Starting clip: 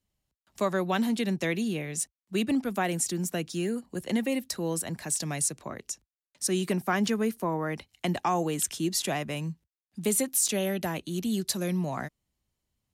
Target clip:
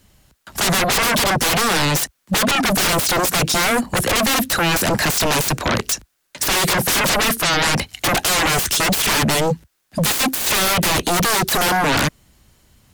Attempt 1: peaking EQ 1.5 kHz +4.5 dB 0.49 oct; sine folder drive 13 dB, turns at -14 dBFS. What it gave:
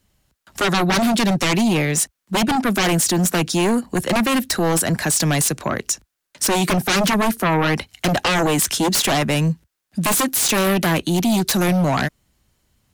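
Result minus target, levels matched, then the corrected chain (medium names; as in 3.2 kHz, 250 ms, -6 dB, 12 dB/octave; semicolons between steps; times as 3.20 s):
sine folder: distortion -23 dB
peaking EQ 1.5 kHz +4.5 dB 0.49 oct; sine folder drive 23 dB, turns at -14 dBFS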